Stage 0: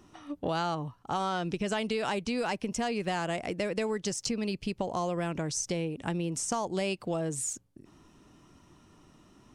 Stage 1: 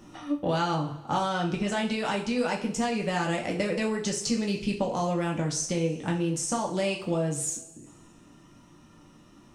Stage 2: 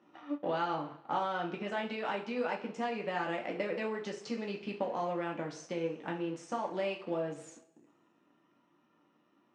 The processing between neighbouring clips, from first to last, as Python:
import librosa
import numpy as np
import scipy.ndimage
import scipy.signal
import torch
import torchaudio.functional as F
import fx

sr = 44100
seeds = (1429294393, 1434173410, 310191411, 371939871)

y1 = fx.rev_double_slope(x, sr, seeds[0], early_s=0.41, late_s=1.6, knee_db=-18, drr_db=-1.0)
y1 = fx.rider(y1, sr, range_db=5, speed_s=0.5)
y2 = fx.law_mismatch(y1, sr, coded='A')
y2 = fx.bandpass_edges(y2, sr, low_hz=300.0, high_hz=2600.0)
y2 = F.gain(torch.from_numpy(y2), -4.0).numpy()